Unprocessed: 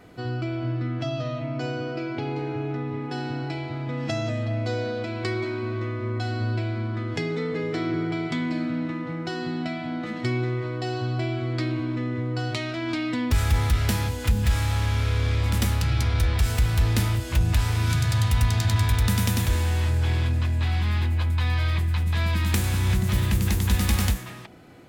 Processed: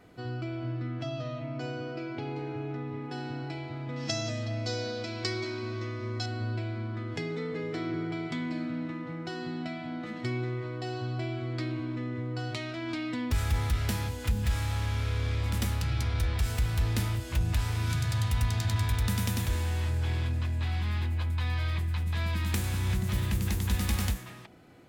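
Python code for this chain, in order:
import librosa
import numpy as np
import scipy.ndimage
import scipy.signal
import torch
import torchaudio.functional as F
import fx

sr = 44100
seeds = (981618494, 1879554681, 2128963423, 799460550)

y = fx.peak_eq(x, sr, hz=5600.0, db=15.0, octaves=1.1, at=(3.96, 6.26))
y = y * 10.0 ** (-6.5 / 20.0)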